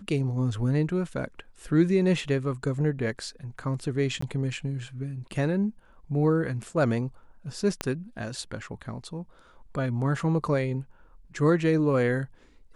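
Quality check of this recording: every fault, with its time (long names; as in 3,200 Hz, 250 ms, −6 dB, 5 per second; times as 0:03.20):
0:04.21–0:04.22: drop-out 14 ms
0:07.81: click −12 dBFS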